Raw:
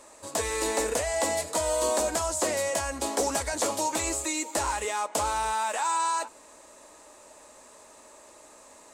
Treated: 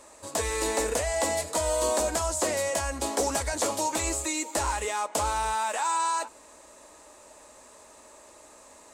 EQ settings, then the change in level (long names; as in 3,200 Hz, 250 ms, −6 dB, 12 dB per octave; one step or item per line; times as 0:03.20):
parametric band 62 Hz +5.5 dB 1.1 octaves
0.0 dB